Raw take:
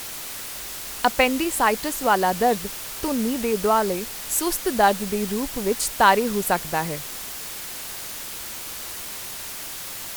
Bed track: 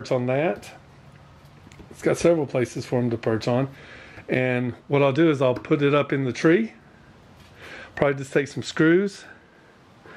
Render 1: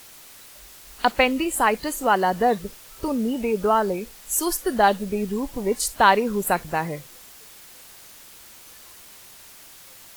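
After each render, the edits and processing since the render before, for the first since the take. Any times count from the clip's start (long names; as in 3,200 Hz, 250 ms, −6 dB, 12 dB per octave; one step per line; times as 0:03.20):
noise reduction from a noise print 12 dB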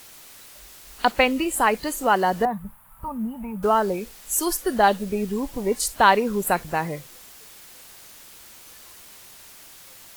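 0:02.45–0:03.63: drawn EQ curve 210 Hz 0 dB, 380 Hz −25 dB, 930 Hz +3 dB, 5,700 Hz −30 dB, 11,000 Hz −6 dB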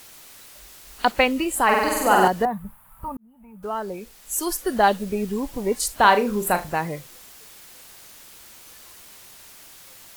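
0:01.64–0:02.28: flutter between parallel walls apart 8.2 metres, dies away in 1.3 s
0:03.17–0:04.77: fade in
0:05.99–0:06.69: flutter between parallel walls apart 6.5 metres, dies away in 0.25 s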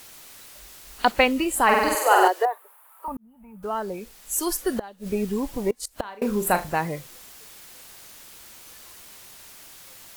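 0:01.95–0:03.08: Butterworth high-pass 350 Hz 72 dB per octave
0:04.76–0:06.22: gate with flip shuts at −13 dBFS, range −24 dB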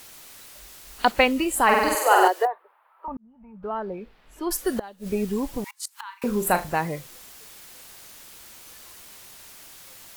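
0:02.47–0:04.51: high-frequency loss of the air 390 metres
0:05.64–0:06.24: linear-phase brick-wall high-pass 820 Hz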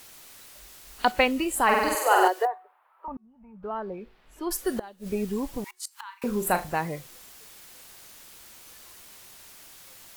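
tuned comb filter 370 Hz, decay 0.45 s, harmonics all, mix 30%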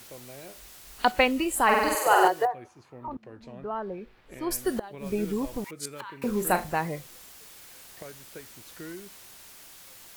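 mix in bed track −23.5 dB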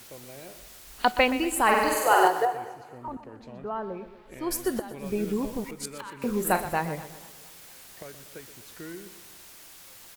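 repeating echo 123 ms, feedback 46%, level −13 dB
feedback echo with a swinging delay time 234 ms, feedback 51%, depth 84 cents, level −23 dB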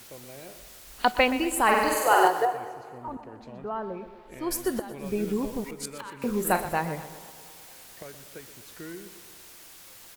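delay with a band-pass on its return 106 ms, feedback 79%, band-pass 600 Hz, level −21 dB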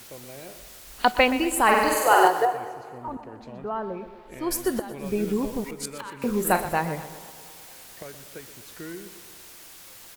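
level +2.5 dB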